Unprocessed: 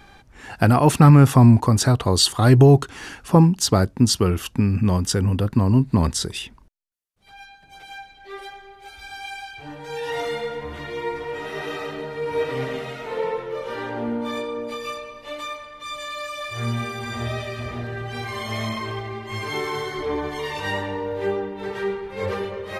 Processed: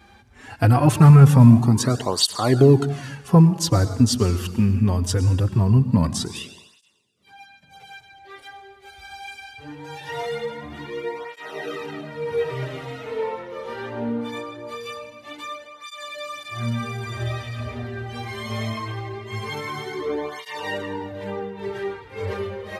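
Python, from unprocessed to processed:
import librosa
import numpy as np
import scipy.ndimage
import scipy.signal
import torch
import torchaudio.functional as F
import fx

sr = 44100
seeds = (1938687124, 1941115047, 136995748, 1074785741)

y = scipy.signal.sosfilt(scipy.signal.butter(2, 85.0, 'highpass', fs=sr, output='sos'), x)
y = fx.low_shelf(y, sr, hz=130.0, db=6.5)
y = fx.rev_plate(y, sr, seeds[0], rt60_s=1.2, hf_ratio=1.0, predelay_ms=90, drr_db=12.5)
y = fx.flanger_cancel(y, sr, hz=0.22, depth_ms=7.2)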